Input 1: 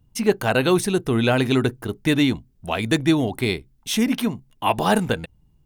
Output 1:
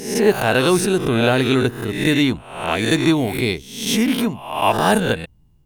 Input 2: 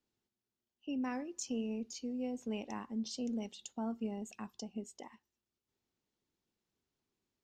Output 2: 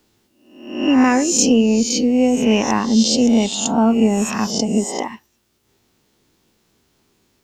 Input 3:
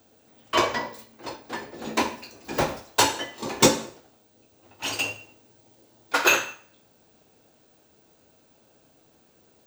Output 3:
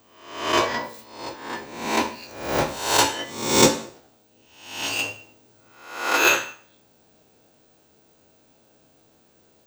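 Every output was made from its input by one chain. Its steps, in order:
reverse spectral sustain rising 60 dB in 0.69 s; peak normalisation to -2 dBFS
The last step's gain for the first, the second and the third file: +1.0 dB, +23.0 dB, -1.0 dB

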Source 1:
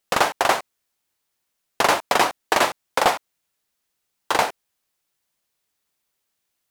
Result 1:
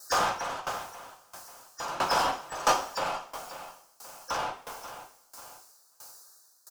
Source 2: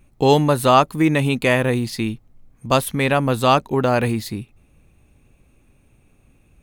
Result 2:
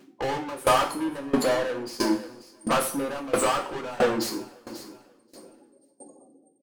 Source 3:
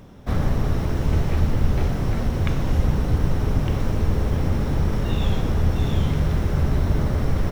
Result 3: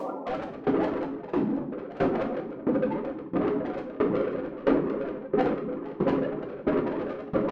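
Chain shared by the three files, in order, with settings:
Chebyshev band-stop 1.3–5.1 kHz, order 2; spectral gate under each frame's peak -20 dB strong; high-pass 270 Hz 24 dB/octave; treble shelf 2.1 kHz +10.5 dB; compression 2:1, threshold -27 dBFS; overdrive pedal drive 37 dB, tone 4.8 kHz, clips at -9.5 dBFS; feedback delay 536 ms, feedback 28%, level -16.5 dB; two-slope reverb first 0.51 s, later 2.3 s, from -18 dB, DRR 0.5 dB; sawtooth tremolo in dB decaying 1.5 Hz, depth 20 dB; trim -5.5 dB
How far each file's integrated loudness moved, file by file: -9.5 LU, -8.0 LU, -5.5 LU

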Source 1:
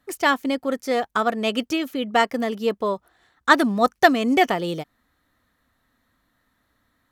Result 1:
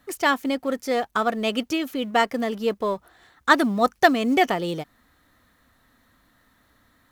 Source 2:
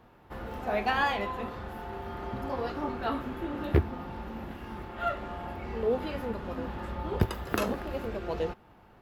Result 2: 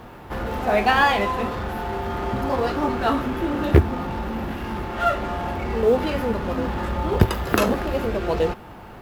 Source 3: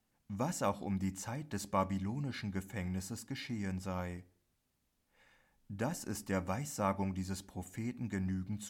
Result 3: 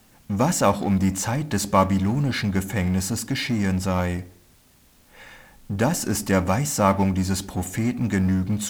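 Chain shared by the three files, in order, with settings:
companding laws mixed up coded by mu; normalise loudness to -23 LUFS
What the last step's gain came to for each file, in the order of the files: -1.5 dB, +9.0 dB, +13.5 dB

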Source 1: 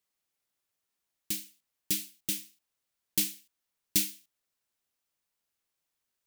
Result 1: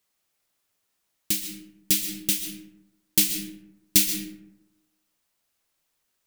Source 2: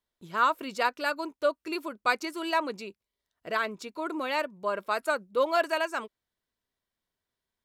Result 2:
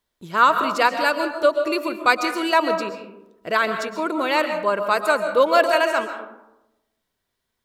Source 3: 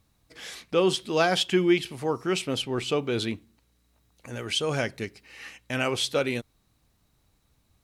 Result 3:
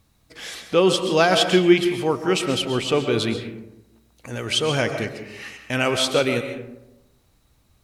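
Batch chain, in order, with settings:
algorithmic reverb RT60 0.95 s, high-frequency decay 0.4×, pre-delay 90 ms, DRR 7 dB; peak normalisation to -3 dBFS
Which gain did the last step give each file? +8.0 dB, +8.5 dB, +5.5 dB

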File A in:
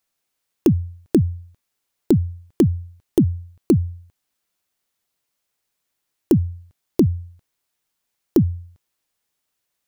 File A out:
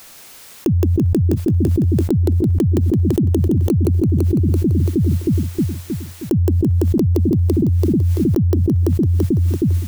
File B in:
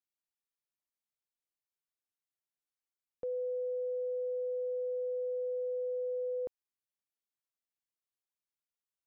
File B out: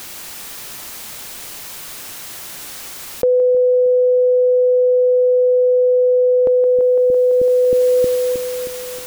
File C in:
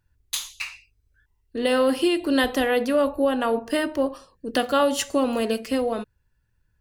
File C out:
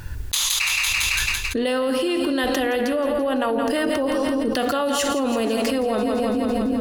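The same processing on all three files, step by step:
two-band feedback delay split 340 Hz, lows 314 ms, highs 168 ms, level -9.5 dB; level flattener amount 100%; peak normalisation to -6 dBFS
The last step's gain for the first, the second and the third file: -4.0 dB, +21.5 dB, -4.5 dB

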